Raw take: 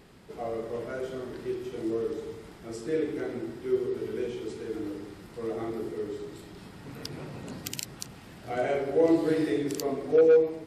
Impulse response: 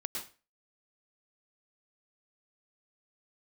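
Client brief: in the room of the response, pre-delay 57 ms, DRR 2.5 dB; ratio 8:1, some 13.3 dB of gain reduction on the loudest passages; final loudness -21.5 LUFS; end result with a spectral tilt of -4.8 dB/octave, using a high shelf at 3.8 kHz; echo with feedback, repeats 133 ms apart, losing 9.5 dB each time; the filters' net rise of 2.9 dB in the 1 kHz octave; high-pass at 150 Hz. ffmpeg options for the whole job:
-filter_complex "[0:a]highpass=150,equalizer=f=1000:t=o:g=5,highshelf=f=3800:g=-6,acompressor=threshold=0.0355:ratio=8,aecho=1:1:133|266|399|532:0.335|0.111|0.0365|0.012,asplit=2[s0][s1];[1:a]atrim=start_sample=2205,adelay=57[s2];[s1][s2]afir=irnorm=-1:irlink=0,volume=0.631[s3];[s0][s3]amix=inputs=2:normalize=0,volume=3.98"

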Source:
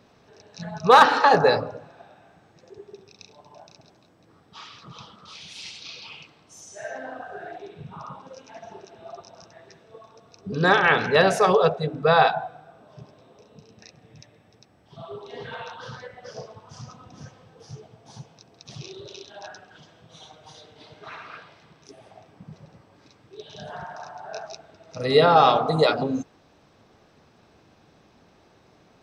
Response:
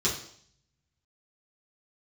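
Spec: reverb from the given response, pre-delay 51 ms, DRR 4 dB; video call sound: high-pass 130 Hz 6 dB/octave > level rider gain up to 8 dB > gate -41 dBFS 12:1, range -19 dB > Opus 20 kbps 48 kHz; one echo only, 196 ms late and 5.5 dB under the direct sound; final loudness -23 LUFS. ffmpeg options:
-filter_complex "[0:a]aecho=1:1:196:0.531,asplit=2[s0][s1];[1:a]atrim=start_sample=2205,adelay=51[s2];[s1][s2]afir=irnorm=-1:irlink=0,volume=0.2[s3];[s0][s3]amix=inputs=2:normalize=0,highpass=f=130:p=1,dynaudnorm=m=2.51,agate=range=0.112:threshold=0.00891:ratio=12,volume=0.531" -ar 48000 -c:a libopus -b:a 20k

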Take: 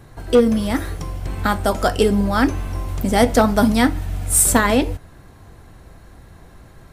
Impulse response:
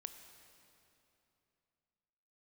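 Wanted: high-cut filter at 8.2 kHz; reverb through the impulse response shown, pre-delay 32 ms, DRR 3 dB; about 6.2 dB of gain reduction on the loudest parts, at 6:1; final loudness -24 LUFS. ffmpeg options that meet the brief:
-filter_complex "[0:a]lowpass=8200,acompressor=threshold=0.158:ratio=6,asplit=2[s0][s1];[1:a]atrim=start_sample=2205,adelay=32[s2];[s1][s2]afir=irnorm=-1:irlink=0,volume=1.19[s3];[s0][s3]amix=inputs=2:normalize=0,volume=0.708"

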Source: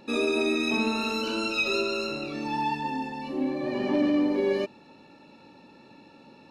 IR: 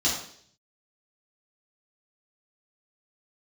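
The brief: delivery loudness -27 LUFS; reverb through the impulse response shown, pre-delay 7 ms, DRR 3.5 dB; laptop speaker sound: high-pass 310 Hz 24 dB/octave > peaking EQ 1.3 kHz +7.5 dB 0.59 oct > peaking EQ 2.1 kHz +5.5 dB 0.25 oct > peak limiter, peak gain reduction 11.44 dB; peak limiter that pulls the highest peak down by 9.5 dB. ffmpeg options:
-filter_complex "[0:a]alimiter=level_in=1.12:limit=0.0631:level=0:latency=1,volume=0.891,asplit=2[s0][s1];[1:a]atrim=start_sample=2205,adelay=7[s2];[s1][s2]afir=irnorm=-1:irlink=0,volume=0.188[s3];[s0][s3]amix=inputs=2:normalize=0,highpass=f=310:w=0.5412,highpass=f=310:w=1.3066,equalizer=f=1300:t=o:w=0.59:g=7.5,equalizer=f=2100:t=o:w=0.25:g=5.5,volume=3.55,alimiter=limit=0.106:level=0:latency=1"

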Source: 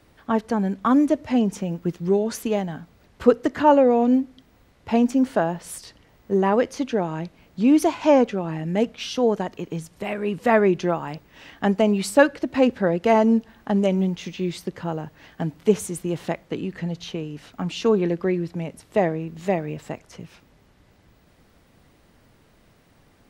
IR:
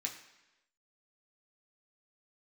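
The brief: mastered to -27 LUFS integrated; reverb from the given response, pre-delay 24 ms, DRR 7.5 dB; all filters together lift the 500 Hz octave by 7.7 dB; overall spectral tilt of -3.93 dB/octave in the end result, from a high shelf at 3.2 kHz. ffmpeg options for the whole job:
-filter_complex "[0:a]equalizer=f=500:t=o:g=9,highshelf=f=3200:g=6.5,asplit=2[s0][s1];[1:a]atrim=start_sample=2205,adelay=24[s2];[s1][s2]afir=irnorm=-1:irlink=0,volume=0.422[s3];[s0][s3]amix=inputs=2:normalize=0,volume=0.299"

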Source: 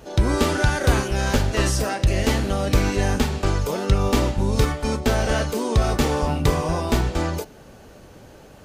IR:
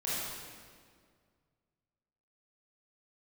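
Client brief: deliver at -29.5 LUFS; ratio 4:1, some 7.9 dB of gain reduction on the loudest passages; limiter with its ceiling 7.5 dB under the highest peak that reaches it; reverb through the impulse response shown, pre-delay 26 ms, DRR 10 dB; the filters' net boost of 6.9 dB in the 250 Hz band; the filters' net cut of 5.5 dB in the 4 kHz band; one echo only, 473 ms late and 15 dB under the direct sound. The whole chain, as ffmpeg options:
-filter_complex "[0:a]equalizer=f=250:t=o:g=8.5,equalizer=f=4000:t=o:g=-7.5,acompressor=threshold=0.1:ratio=4,alimiter=limit=0.15:level=0:latency=1,aecho=1:1:473:0.178,asplit=2[s0][s1];[1:a]atrim=start_sample=2205,adelay=26[s2];[s1][s2]afir=irnorm=-1:irlink=0,volume=0.158[s3];[s0][s3]amix=inputs=2:normalize=0,volume=0.708"

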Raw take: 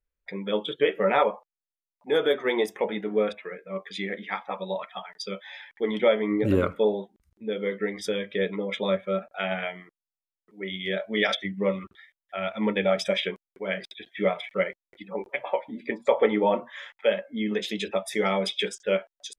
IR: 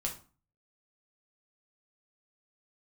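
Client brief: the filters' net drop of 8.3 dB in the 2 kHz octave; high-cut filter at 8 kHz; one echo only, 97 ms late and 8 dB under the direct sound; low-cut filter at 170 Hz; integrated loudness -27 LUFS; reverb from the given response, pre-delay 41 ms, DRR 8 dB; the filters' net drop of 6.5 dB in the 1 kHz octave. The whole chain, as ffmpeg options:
-filter_complex "[0:a]highpass=170,lowpass=8000,equalizer=f=1000:t=o:g=-7,equalizer=f=2000:t=o:g=-8,aecho=1:1:97:0.398,asplit=2[s0][s1];[1:a]atrim=start_sample=2205,adelay=41[s2];[s1][s2]afir=irnorm=-1:irlink=0,volume=0.316[s3];[s0][s3]amix=inputs=2:normalize=0,volume=1.26"

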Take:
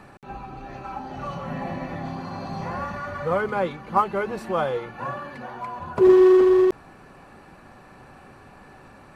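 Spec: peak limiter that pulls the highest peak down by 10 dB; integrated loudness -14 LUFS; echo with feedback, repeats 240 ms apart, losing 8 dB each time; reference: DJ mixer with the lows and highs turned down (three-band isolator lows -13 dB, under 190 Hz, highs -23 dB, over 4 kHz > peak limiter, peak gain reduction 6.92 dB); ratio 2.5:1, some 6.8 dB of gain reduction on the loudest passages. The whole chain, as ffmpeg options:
-filter_complex "[0:a]acompressor=threshold=0.0794:ratio=2.5,alimiter=limit=0.0708:level=0:latency=1,acrossover=split=190 4000:gain=0.224 1 0.0708[s0][s1][s2];[s0][s1][s2]amix=inputs=3:normalize=0,aecho=1:1:240|480|720|960|1200:0.398|0.159|0.0637|0.0255|0.0102,volume=10,alimiter=limit=0.562:level=0:latency=1"

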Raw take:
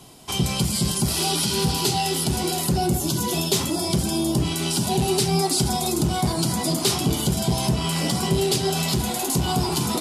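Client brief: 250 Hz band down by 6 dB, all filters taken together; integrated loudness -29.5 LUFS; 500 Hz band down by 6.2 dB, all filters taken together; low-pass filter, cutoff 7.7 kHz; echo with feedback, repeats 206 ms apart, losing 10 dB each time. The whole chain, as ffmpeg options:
-af "lowpass=7700,equalizer=f=250:t=o:g=-8.5,equalizer=f=500:t=o:g=-5,aecho=1:1:206|412|618|824:0.316|0.101|0.0324|0.0104,volume=0.596"

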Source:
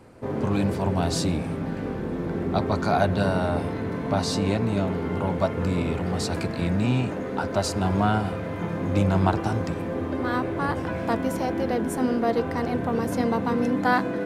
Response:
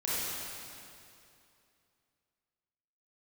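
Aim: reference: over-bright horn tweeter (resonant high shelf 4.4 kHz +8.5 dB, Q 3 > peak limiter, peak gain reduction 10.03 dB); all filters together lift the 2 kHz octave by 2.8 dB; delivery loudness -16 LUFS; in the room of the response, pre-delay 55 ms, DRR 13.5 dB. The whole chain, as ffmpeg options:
-filter_complex "[0:a]equalizer=f=2000:t=o:g=6,asplit=2[s0][s1];[1:a]atrim=start_sample=2205,adelay=55[s2];[s1][s2]afir=irnorm=-1:irlink=0,volume=0.0841[s3];[s0][s3]amix=inputs=2:normalize=0,highshelf=f=4400:t=q:w=3:g=8.5,volume=3.16,alimiter=limit=0.531:level=0:latency=1"

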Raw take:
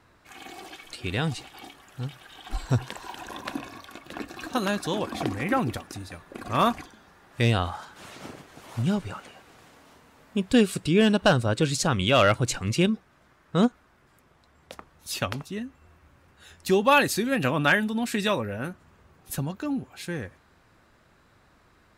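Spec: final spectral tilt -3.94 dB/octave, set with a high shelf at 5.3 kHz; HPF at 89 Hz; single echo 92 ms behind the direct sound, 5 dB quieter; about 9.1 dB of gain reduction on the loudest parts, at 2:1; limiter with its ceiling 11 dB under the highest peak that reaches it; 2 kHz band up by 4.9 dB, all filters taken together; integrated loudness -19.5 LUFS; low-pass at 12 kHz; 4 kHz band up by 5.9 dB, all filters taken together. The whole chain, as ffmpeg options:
-af "highpass=89,lowpass=12000,equalizer=f=2000:t=o:g=5,equalizer=f=4000:t=o:g=4.5,highshelf=f=5300:g=3.5,acompressor=threshold=0.0355:ratio=2,alimiter=limit=0.0944:level=0:latency=1,aecho=1:1:92:0.562,volume=4.73"

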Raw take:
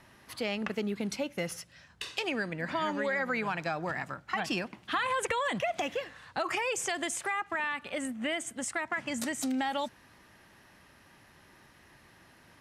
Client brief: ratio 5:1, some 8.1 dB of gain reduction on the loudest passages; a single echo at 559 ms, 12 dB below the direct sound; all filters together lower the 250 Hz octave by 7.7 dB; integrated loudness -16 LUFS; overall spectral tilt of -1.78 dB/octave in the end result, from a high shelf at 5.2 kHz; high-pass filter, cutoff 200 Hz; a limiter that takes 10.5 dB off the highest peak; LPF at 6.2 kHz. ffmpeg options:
-af "highpass=200,lowpass=6200,equalizer=f=250:t=o:g=-7.5,highshelf=f=5200:g=6.5,acompressor=threshold=0.0158:ratio=5,alimiter=level_in=2.24:limit=0.0631:level=0:latency=1,volume=0.447,aecho=1:1:559:0.251,volume=18.8"

